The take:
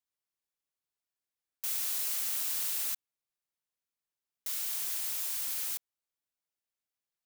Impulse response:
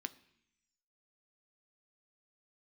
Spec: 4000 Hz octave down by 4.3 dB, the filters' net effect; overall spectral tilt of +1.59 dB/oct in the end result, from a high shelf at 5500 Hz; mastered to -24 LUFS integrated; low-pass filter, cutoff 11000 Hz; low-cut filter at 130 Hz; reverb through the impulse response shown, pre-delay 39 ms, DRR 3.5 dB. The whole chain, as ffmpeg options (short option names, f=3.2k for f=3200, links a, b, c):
-filter_complex "[0:a]highpass=130,lowpass=11k,equalizer=f=4k:t=o:g=-3.5,highshelf=f=5.5k:g=-4.5,asplit=2[a][b];[1:a]atrim=start_sample=2205,adelay=39[c];[b][c]afir=irnorm=-1:irlink=0,volume=-1.5dB[d];[a][d]amix=inputs=2:normalize=0,volume=15.5dB"